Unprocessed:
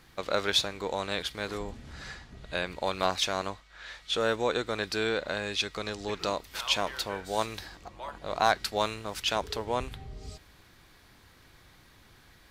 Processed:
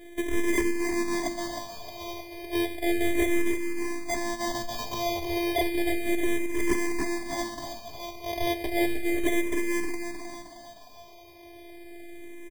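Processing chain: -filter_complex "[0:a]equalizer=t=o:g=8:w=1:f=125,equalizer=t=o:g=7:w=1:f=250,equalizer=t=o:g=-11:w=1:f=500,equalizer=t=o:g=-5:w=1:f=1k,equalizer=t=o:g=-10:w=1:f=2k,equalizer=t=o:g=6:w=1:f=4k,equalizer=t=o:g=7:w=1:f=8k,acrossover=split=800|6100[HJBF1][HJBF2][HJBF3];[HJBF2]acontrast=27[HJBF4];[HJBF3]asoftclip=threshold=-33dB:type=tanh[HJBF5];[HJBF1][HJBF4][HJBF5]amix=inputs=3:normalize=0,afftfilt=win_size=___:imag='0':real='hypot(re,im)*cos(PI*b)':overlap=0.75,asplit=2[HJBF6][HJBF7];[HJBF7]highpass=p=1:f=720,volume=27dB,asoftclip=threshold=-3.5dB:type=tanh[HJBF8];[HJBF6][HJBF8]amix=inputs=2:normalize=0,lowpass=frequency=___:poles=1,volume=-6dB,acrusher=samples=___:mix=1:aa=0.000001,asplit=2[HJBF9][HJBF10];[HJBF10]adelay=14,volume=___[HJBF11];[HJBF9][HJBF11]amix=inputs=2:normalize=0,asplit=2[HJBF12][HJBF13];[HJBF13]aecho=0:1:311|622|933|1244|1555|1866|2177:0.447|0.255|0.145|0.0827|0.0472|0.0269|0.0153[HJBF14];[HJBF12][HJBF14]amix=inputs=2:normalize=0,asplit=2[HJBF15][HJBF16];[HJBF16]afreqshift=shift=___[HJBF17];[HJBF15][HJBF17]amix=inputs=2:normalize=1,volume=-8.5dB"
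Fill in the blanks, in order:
512, 4.8k, 32, -12dB, -0.33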